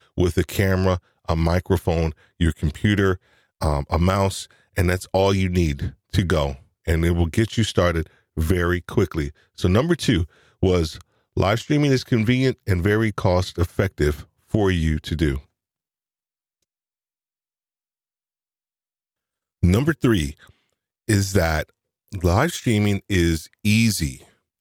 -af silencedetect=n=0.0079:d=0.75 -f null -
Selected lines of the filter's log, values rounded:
silence_start: 15.40
silence_end: 19.63 | silence_duration: 4.22